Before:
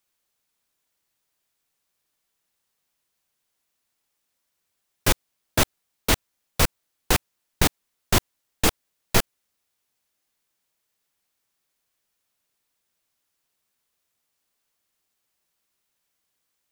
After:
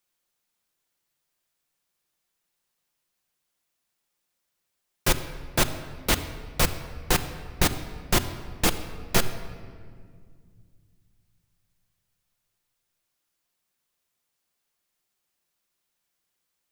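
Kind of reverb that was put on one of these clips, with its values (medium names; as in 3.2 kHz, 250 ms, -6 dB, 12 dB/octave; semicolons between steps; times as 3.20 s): simulated room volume 3900 m³, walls mixed, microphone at 0.89 m; trim -2.5 dB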